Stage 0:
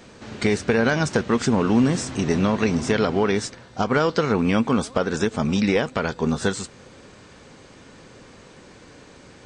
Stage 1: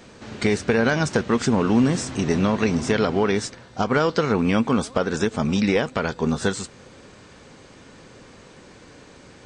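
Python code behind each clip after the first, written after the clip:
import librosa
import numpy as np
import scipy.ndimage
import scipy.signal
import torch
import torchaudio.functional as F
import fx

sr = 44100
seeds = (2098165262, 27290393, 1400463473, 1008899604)

y = x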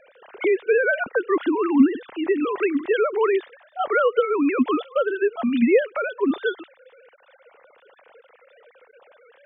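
y = fx.sine_speech(x, sr)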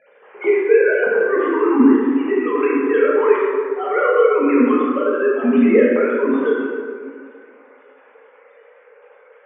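y = fx.cabinet(x, sr, low_hz=190.0, low_slope=12, high_hz=2400.0, hz=(320.0, 660.0, 1400.0), db=(-4, -10, -5))
y = fx.rev_plate(y, sr, seeds[0], rt60_s=2.1, hf_ratio=0.45, predelay_ms=0, drr_db=-6.5)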